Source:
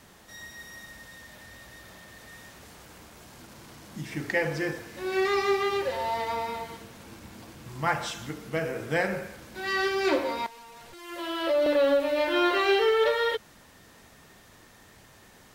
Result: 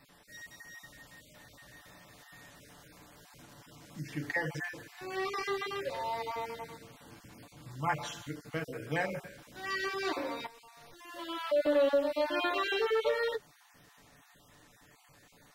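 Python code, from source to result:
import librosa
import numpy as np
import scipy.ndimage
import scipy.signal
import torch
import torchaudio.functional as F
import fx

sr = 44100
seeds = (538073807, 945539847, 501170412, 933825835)

y = fx.spec_dropout(x, sr, seeds[0], share_pct=22)
y = fx.notch(y, sr, hz=410.0, q=12.0)
y = y + 0.53 * np.pad(y, (int(6.9 * sr / 1000.0), 0))[:len(y)]
y = y * 10.0 ** (-6.5 / 20.0)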